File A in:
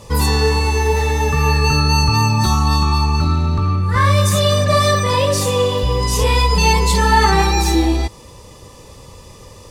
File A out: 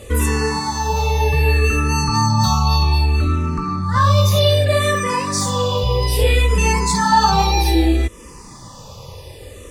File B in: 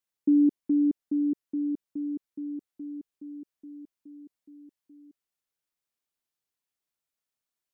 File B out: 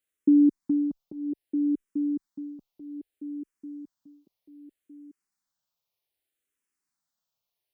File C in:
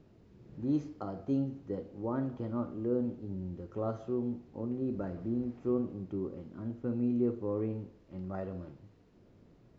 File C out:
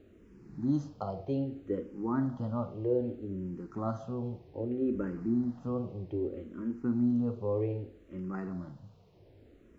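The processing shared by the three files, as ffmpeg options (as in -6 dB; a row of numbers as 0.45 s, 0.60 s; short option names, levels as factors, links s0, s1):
-filter_complex "[0:a]asplit=2[s0][s1];[s1]acompressor=threshold=0.0447:ratio=6,volume=0.891[s2];[s0][s2]amix=inputs=2:normalize=0,asplit=2[s3][s4];[s4]afreqshift=-0.63[s5];[s3][s5]amix=inputs=2:normalize=1"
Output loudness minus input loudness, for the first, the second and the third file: -1.5 LU, +1.5 LU, +1.5 LU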